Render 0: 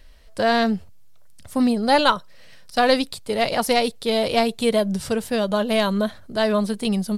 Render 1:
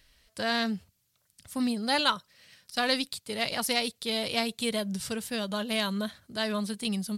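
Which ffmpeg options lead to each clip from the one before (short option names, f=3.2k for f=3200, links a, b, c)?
-af "highpass=f=180:p=1,equalizer=f=580:t=o:w=2.5:g=-11,volume=-2dB"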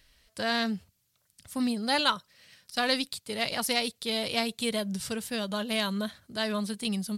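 -af anull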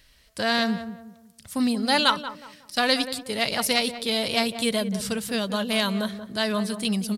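-filter_complex "[0:a]asplit=2[a][b];[b]adelay=183,lowpass=f=1.3k:p=1,volume=-10dB,asplit=2[c][d];[d]adelay=183,lowpass=f=1.3k:p=1,volume=0.36,asplit=2[e][f];[f]adelay=183,lowpass=f=1.3k:p=1,volume=0.36,asplit=2[g][h];[h]adelay=183,lowpass=f=1.3k:p=1,volume=0.36[i];[a][c][e][g][i]amix=inputs=5:normalize=0,volume=5dB"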